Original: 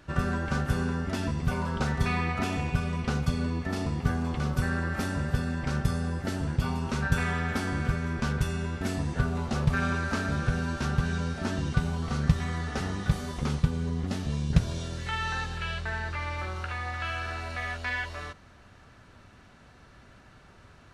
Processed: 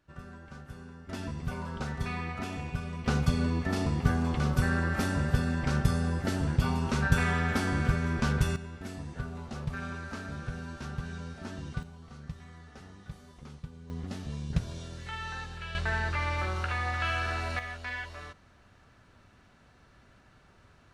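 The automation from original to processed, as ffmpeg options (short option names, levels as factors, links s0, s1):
-af "asetnsamples=n=441:p=0,asendcmd='1.09 volume volume -7dB;3.06 volume volume 1dB;8.56 volume volume -10dB;11.83 volume volume -18dB;13.9 volume volume -7dB;15.75 volume volume 2.5dB;17.59 volume volume -5.5dB',volume=0.126"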